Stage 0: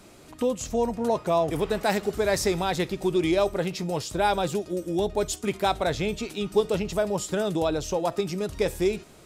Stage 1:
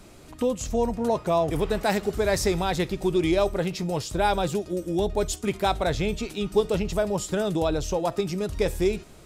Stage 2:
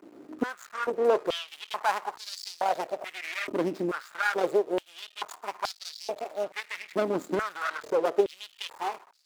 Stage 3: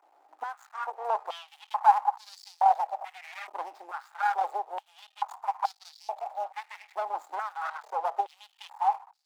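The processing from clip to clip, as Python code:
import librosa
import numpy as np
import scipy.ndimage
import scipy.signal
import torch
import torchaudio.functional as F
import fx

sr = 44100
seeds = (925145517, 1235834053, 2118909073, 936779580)

y1 = fx.low_shelf(x, sr, hz=80.0, db=11.0)
y2 = scipy.ndimage.median_filter(y1, 15, mode='constant')
y2 = np.maximum(y2, 0.0)
y2 = fx.filter_held_highpass(y2, sr, hz=2.3, low_hz=290.0, high_hz=4600.0)
y3 = fx.ladder_highpass(y2, sr, hz=760.0, resonance_pct=80)
y3 = fx.dynamic_eq(y3, sr, hz=1000.0, q=1.6, threshold_db=-48.0, ratio=4.0, max_db=5)
y3 = F.gain(torch.from_numpy(y3), 2.0).numpy()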